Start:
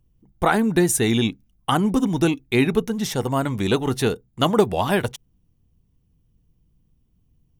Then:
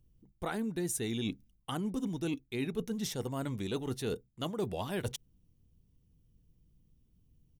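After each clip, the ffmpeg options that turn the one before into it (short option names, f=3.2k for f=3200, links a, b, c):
-af "firequalizer=gain_entry='entry(510,0);entry(780,-5);entry(3700,1)':delay=0.05:min_phase=1,areverse,acompressor=threshold=-29dB:ratio=5,areverse,volume=-4dB"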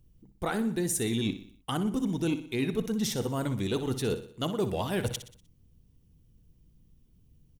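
-filter_complex "[0:a]asplit=2[a][b];[b]asoftclip=type=hard:threshold=-32dB,volume=-11dB[c];[a][c]amix=inputs=2:normalize=0,aecho=1:1:61|122|183|244|305:0.251|0.121|0.0579|0.0278|0.0133,volume=3.5dB"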